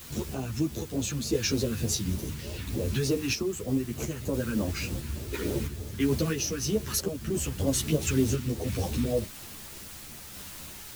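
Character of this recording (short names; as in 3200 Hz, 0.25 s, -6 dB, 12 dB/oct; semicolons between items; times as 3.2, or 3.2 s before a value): phasing stages 2, 3.3 Hz, lowest notch 600–1700 Hz; a quantiser's noise floor 8-bit, dither triangular; random-step tremolo 3 Hz; a shimmering, thickened sound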